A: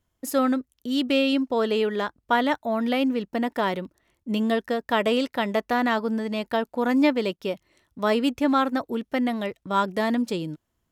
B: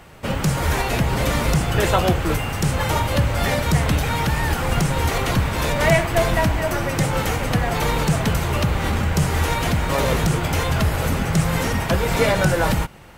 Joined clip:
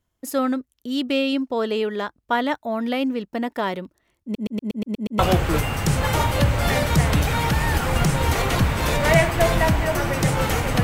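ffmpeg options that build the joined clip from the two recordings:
ffmpeg -i cue0.wav -i cue1.wav -filter_complex "[0:a]apad=whole_dur=10.83,atrim=end=10.83,asplit=8[link_01][link_02][link_03][link_04][link_05][link_06][link_07][link_08];[link_01]atrim=end=4.352[link_09];[link_02]atrim=start=4.228:end=4.352[link_10];[link_03]atrim=start=4.228:end=4.352[link_11];[link_04]atrim=start=4.228:end=4.352[link_12];[link_05]atrim=start=4.228:end=4.352[link_13];[link_06]atrim=start=4.228:end=4.352[link_14];[link_07]atrim=start=4.228:end=4.352[link_15];[link_08]atrim=start=4.228:end=4.352[link_16];[1:a]atrim=start=1.948:end=7.59[link_17];[link_09][link_10]acrossfade=duration=0.004:curve1=hsin:curve2=hsin[link_18];[link_18][link_11]acrossfade=duration=0.004:curve1=hsin:curve2=hsin[link_19];[link_19][link_12]acrossfade=duration=0.004:curve1=hsin:curve2=hsin[link_20];[link_20][link_13]acrossfade=duration=0.004:curve1=hsin:curve2=hsin[link_21];[link_21][link_14]acrossfade=duration=0.004:curve1=hsin:curve2=hsin[link_22];[link_22][link_15]acrossfade=duration=0.004:curve1=hsin:curve2=hsin[link_23];[link_23][link_16]acrossfade=duration=0.004:curve1=hsin:curve2=hsin[link_24];[link_24][link_17]acrossfade=duration=0.004:curve1=hsin:curve2=hsin" out.wav

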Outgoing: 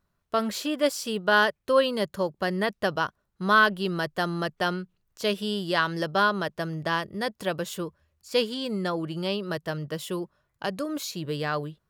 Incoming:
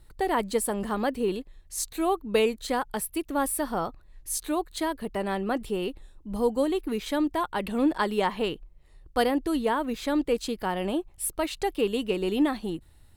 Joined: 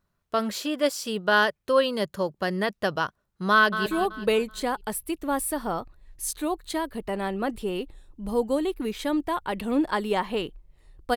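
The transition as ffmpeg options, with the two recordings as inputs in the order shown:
ffmpeg -i cue0.wav -i cue1.wav -filter_complex "[0:a]apad=whole_dur=11.16,atrim=end=11.16,atrim=end=3.862[link_01];[1:a]atrim=start=1.928:end=9.23[link_02];[link_01][link_02]acrossfade=duration=0.004:curve1=hsin:curve2=hsin,asplit=2[link_03][link_04];[link_04]afade=type=in:start_time=3.53:duration=0.01,afade=type=out:start_time=3.86:duration=0.01,aecho=0:1:190|380|570|760|950:0.298538|0.149269|0.0746346|0.0373173|0.0186586[link_05];[link_03][link_05]amix=inputs=2:normalize=0" out.wav

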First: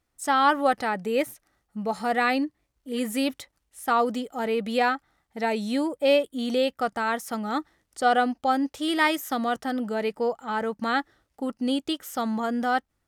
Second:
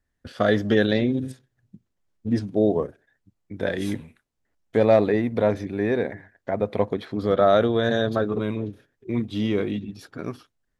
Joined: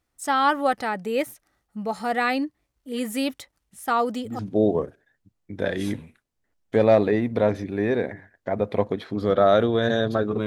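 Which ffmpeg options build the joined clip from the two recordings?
ffmpeg -i cue0.wav -i cue1.wav -filter_complex "[1:a]asplit=2[link_01][link_02];[0:a]apad=whole_dur=10.46,atrim=end=10.46,atrim=end=4.392[link_03];[link_02]atrim=start=2.398:end=8.47[link_04];[link_01]atrim=start=1.7:end=2.4,asetpts=PTS-STARTPTS,volume=-12dB,afade=type=in:duration=0.004:curve=hsin,afade=type=out:start_time=0.696:duration=0.004:curve=hsin,adelay=162729S[link_05];[link_03][link_04]acrossfade=duration=0.004:curve1=hsin:curve2=hsin[link_06];[link_06][link_05]amix=inputs=2:normalize=0" out.wav

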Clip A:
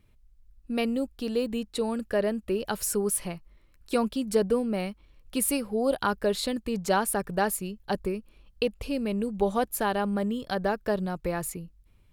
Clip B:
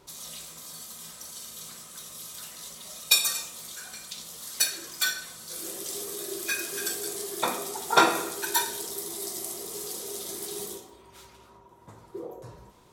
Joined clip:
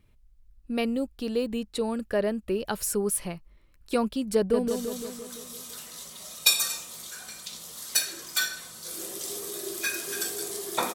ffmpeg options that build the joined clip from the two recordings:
ffmpeg -i cue0.wav -i cue1.wav -filter_complex "[0:a]apad=whole_dur=10.94,atrim=end=10.94,atrim=end=4.682[link_01];[1:a]atrim=start=1.328:end=7.59[link_02];[link_01][link_02]acrossfade=duration=0.004:curve1=hsin:curve2=hsin,asplit=2[link_03][link_04];[link_04]afade=type=in:start_time=4.36:duration=0.01,afade=type=out:start_time=4.68:duration=0.01,aecho=0:1:170|340|510|680|850|1020|1190|1360:0.530884|0.318531|0.191118|0.114671|0.0688026|0.0412816|0.0247689|0.0148614[link_05];[link_03][link_05]amix=inputs=2:normalize=0" out.wav

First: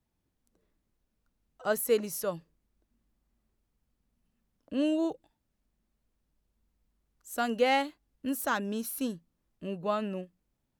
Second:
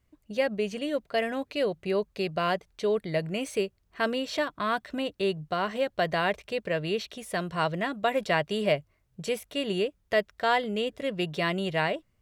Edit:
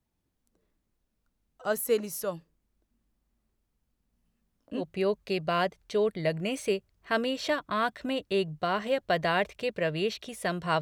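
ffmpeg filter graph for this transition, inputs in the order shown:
ffmpeg -i cue0.wav -i cue1.wav -filter_complex "[0:a]asettb=1/sr,asplit=3[link_01][link_02][link_03];[link_01]atrim=end=4.114[link_04];[link_02]atrim=start=4.11:end=4.82,asetpts=PTS-STARTPTS,afade=type=in:duration=0.004:curve=qsin,afade=type=out:start_time=0.706:duration=0.004:curve=qsin,asplit=2[link_05][link_06];[link_06]adelay=18,volume=-5dB[link_07];[link_05][link_07]amix=inputs=2:normalize=0,atrim=end_sample=31311[link_08];[link_03]atrim=start=4.816[link_09];[link_04][link_08]acrossfade=duration=0.004:curve1=hsin:curve2=qsin[link_10];[link_10][link_09]acrossfade=duration=0.004:curve1=qsin:curve2=hsin,apad=whole_dur=10.81,atrim=end=10.81,atrim=end=4.82,asetpts=PTS-STARTPTS[link_11];[1:a]atrim=start=1.65:end=7.7,asetpts=PTS-STARTPTS[link_12];[link_11][link_12]acrossfade=duration=0.06:curve1=tri:curve2=tri" out.wav

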